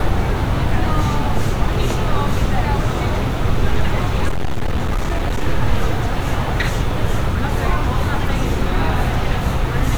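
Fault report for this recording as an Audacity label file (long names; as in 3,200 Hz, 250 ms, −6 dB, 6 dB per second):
4.280000	5.420000	clipping −14.5 dBFS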